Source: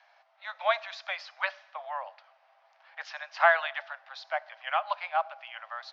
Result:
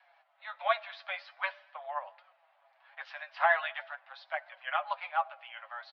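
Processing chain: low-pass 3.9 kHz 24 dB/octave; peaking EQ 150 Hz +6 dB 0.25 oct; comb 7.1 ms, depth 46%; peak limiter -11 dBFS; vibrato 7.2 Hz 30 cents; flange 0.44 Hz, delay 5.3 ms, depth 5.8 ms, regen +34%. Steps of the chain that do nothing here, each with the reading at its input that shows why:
peaking EQ 150 Hz: input has nothing below 480 Hz

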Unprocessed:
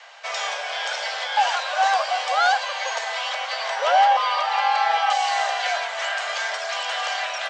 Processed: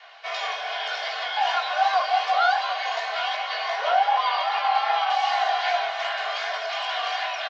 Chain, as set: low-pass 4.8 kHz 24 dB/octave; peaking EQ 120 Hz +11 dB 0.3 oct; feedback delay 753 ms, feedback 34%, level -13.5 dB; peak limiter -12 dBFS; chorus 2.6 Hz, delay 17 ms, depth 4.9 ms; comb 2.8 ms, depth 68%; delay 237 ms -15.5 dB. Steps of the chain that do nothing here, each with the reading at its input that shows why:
peaking EQ 120 Hz: input has nothing below 430 Hz

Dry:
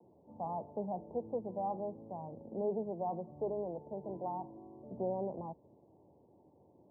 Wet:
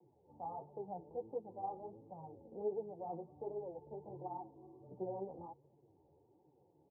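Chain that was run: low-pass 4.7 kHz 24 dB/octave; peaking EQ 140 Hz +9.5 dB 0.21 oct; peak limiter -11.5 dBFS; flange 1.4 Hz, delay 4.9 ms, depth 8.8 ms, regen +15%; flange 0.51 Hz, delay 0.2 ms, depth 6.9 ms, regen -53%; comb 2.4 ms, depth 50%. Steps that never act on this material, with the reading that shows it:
low-pass 4.7 kHz: input has nothing above 1.1 kHz; peak limiter -11.5 dBFS: peak at its input -25.0 dBFS

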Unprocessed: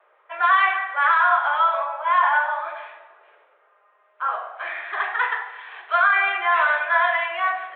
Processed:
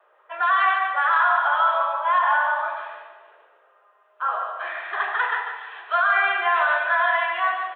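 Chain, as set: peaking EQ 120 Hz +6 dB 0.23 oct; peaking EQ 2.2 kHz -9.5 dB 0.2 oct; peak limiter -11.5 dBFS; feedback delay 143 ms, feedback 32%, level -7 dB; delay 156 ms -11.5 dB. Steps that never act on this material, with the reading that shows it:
peaking EQ 120 Hz: input has nothing below 380 Hz

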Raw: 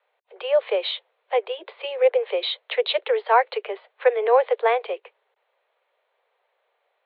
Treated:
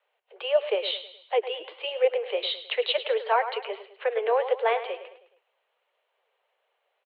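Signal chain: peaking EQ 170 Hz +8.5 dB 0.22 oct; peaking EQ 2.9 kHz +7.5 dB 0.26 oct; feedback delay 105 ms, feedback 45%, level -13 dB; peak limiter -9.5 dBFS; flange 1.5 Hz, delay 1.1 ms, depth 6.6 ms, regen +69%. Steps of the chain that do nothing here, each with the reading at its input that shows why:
peaking EQ 170 Hz: input has nothing below 340 Hz

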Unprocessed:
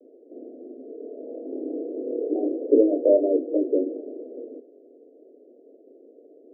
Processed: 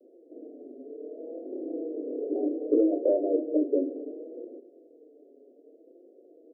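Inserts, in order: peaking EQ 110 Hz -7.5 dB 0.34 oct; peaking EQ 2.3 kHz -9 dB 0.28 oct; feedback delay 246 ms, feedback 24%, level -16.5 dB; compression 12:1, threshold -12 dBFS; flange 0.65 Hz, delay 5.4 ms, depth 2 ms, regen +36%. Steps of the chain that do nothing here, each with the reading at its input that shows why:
peaking EQ 110 Hz: input has nothing below 210 Hz; peaking EQ 2.3 kHz: input has nothing above 760 Hz

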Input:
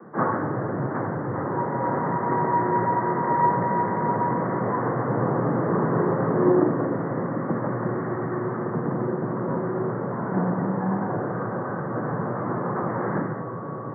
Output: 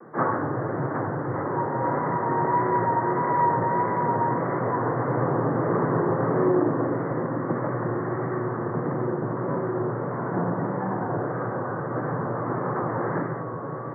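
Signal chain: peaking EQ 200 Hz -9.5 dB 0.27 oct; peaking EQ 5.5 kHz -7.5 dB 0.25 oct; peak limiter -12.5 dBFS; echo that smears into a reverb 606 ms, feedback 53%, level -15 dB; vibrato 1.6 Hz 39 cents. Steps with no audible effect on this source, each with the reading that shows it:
peaking EQ 5.5 kHz: input has nothing above 1.9 kHz

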